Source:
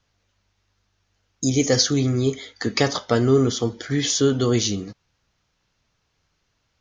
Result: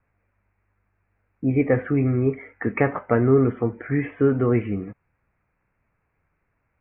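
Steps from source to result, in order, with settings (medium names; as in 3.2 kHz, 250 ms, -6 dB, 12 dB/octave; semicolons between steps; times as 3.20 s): steep low-pass 2.5 kHz 96 dB/octave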